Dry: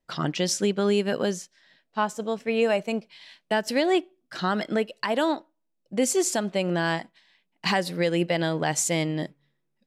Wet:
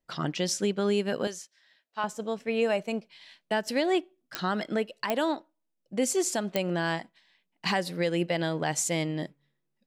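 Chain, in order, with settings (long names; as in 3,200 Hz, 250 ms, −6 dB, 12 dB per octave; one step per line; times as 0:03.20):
0:01.27–0:02.04: high-pass filter 880 Hz 6 dB per octave
digital clicks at 0:04.35/0:05.10/0:06.56, −8 dBFS
level −3.5 dB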